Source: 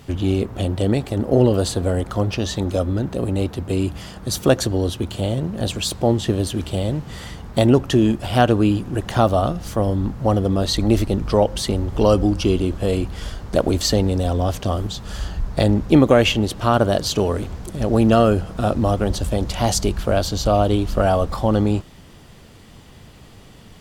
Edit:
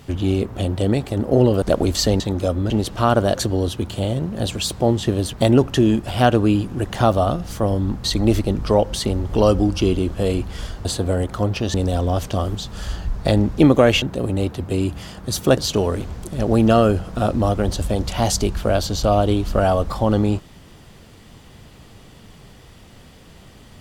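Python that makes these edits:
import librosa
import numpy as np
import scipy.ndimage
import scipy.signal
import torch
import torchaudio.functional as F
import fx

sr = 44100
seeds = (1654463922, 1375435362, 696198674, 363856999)

y = fx.edit(x, sr, fx.swap(start_s=1.62, length_s=0.89, other_s=13.48, other_length_s=0.58),
    fx.swap(start_s=3.01, length_s=1.55, other_s=16.34, other_length_s=0.65),
    fx.cut(start_s=6.54, length_s=0.95),
    fx.cut(start_s=10.2, length_s=0.47), tone=tone)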